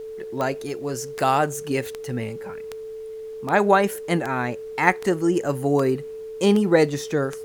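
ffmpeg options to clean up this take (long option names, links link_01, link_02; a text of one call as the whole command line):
ffmpeg -i in.wav -af "adeclick=threshold=4,bandreject=frequency=440:width=30,agate=range=-21dB:threshold=-27dB" out.wav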